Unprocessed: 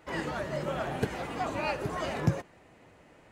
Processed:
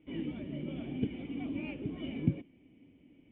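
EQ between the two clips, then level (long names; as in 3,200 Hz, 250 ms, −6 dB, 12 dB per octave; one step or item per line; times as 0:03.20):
formant resonators in series i
+6.5 dB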